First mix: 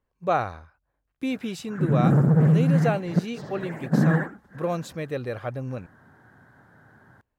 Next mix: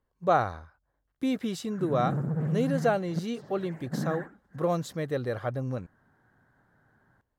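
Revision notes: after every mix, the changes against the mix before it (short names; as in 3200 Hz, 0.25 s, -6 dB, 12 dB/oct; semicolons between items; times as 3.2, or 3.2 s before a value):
speech: add bell 2500 Hz -11 dB 0.24 oct; background -11.5 dB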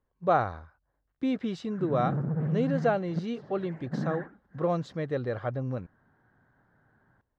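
master: add air absorption 160 m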